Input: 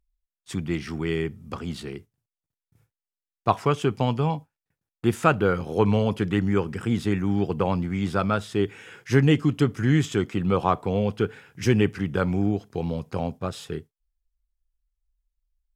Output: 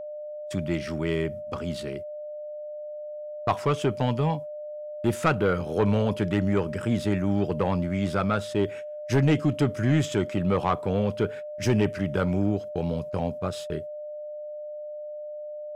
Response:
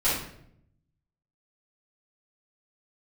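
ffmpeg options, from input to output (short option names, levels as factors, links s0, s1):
-af "asoftclip=type=tanh:threshold=0.2,agate=range=0.0224:threshold=0.0112:ratio=16:detection=peak,aeval=exprs='val(0)+0.02*sin(2*PI*600*n/s)':c=same"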